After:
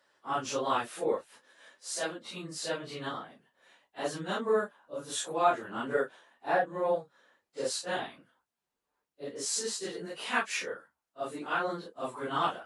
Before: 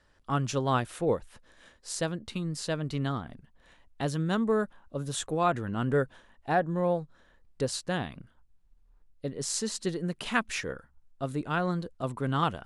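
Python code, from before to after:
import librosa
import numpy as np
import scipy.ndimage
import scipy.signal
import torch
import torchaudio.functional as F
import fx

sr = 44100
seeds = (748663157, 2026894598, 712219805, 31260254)

y = fx.phase_scramble(x, sr, seeds[0], window_ms=100)
y = scipy.signal.sosfilt(scipy.signal.butter(2, 400.0, 'highpass', fs=sr, output='sos'), y)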